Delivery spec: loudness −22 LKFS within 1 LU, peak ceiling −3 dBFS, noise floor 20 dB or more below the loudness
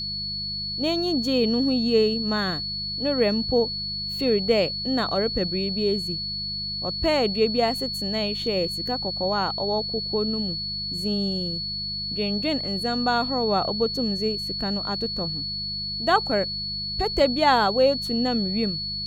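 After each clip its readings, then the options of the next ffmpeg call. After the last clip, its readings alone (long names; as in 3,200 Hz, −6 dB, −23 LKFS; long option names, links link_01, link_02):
mains hum 50 Hz; hum harmonics up to 200 Hz; level of the hum −37 dBFS; interfering tone 4,400 Hz; level of the tone −28 dBFS; integrated loudness −24.0 LKFS; sample peak −6.5 dBFS; target loudness −22.0 LKFS
→ -af "bandreject=frequency=50:width_type=h:width=4,bandreject=frequency=100:width_type=h:width=4,bandreject=frequency=150:width_type=h:width=4,bandreject=frequency=200:width_type=h:width=4"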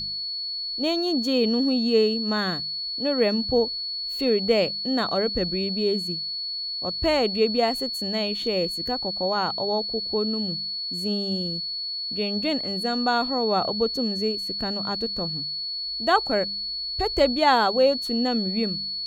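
mains hum none found; interfering tone 4,400 Hz; level of the tone −28 dBFS
→ -af "bandreject=frequency=4400:width=30"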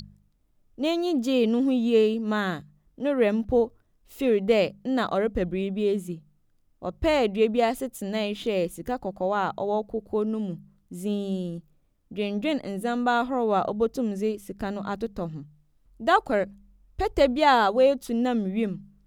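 interfering tone none found; integrated loudness −25.5 LKFS; sample peak −7.5 dBFS; target loudness −22.0 LKFS
→ -af "volume=3.5dB"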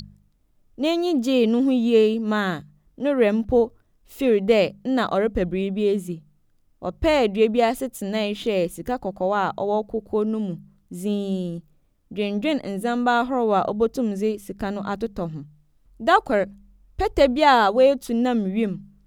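integrated loudness −22.0 LKFS; sample peak −4.0 dBFS; background noise floor −62 dBFS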